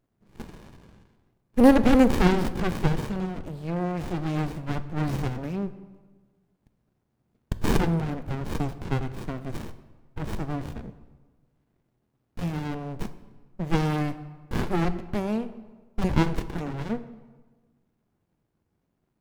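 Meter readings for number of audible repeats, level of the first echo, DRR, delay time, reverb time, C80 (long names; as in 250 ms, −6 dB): no echo audible, no echo audible, 11.5 dB, no echo audible, 1.3 s, 15.5 dB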